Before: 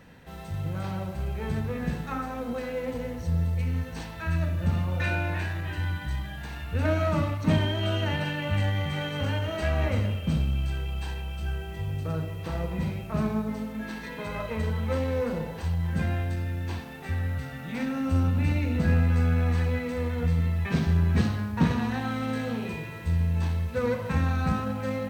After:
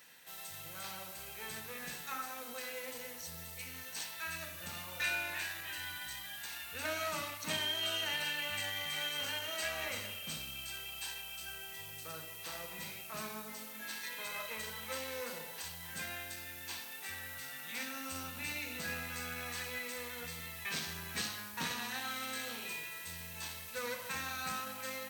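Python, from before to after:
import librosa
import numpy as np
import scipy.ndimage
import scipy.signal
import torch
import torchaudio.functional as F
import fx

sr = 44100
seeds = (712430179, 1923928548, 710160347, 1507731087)

y = np.diff(x, prepend=0.0)
y = F.gain(torch.from_numpy(y), 8.0).numpy()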